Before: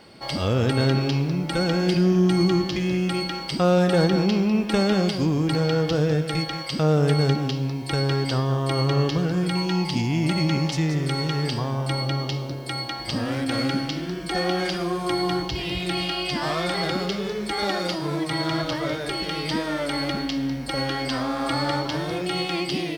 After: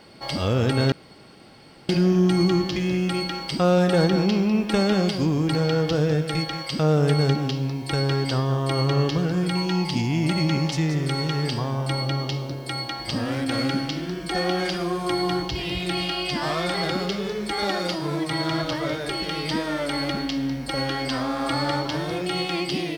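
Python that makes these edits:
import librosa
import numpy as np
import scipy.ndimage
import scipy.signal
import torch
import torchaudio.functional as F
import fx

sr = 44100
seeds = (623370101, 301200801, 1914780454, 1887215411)

y = fx.edit(x, sr, fx.room_tone_fill(start_s=0.92, length_s=0.97), tone=tone)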